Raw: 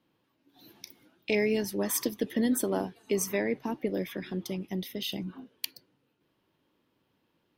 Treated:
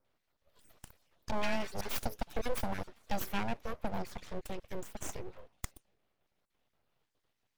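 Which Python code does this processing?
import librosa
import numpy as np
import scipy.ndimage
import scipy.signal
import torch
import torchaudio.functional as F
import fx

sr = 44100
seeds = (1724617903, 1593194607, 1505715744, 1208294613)

y = fx.spec_dropout(x, sr, seeds[0], share_pct=25)
y = fx.dispersion(y, sr, late='highs', ms=138.0, hz=1700.0, at=(1.31, 1.81))
y = np.abs(y)
y = F.gain(torch.from_numpy(y), -3.0).numpy()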